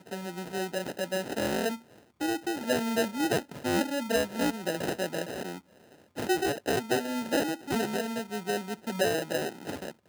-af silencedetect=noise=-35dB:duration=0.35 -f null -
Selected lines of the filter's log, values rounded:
silence_start: 1.76
silence_end: 2.21 | silence_duration: 0.45
silence_start: 5.58
silence_end: 6.17 | silence_duration: 0.59